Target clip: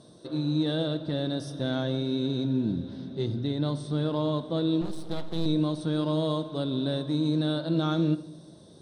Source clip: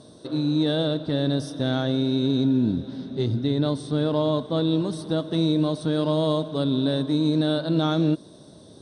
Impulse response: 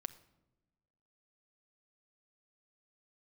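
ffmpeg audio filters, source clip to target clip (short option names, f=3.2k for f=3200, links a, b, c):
-filter_complex "[0:a]asettb=1/sr,asplit=3[a][b][c];[a]atrim=end=4.814[d];[b]atrim=start=4.81:end=5.46,asetpts=PTS-STARTPTS,afade=t=in:d=0.004:c=qsin,afade=t=out:st=0.646:d=0.004:c=qsin,aeval=exprs='max(val(0),0)':c=same[e];[c]atrim=start=5.456[f];[d][e]acrossfade=d=0.004:c1=hsin:c2=qsin[g];[g][f]acrossfade=d=0.004:c1=qsin:c2=hsin[h];[1:a]atrim=start_sample=2205[i];[h][i]afir=irnorm=-1:irlink=0,volume=-2dB"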